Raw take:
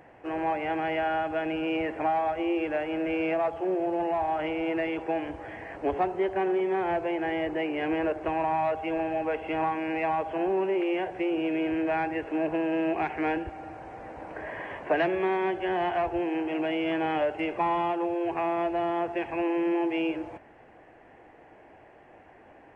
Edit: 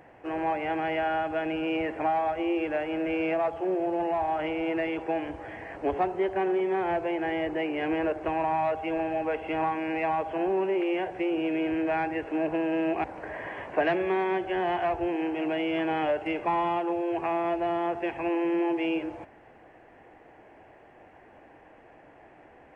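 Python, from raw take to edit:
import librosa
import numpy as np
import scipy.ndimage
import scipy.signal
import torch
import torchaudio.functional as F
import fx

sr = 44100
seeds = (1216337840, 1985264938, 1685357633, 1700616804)

y = fx.edit(x, sr, fx.cut(start_s=13.04, length_s=1.13), tone=tone)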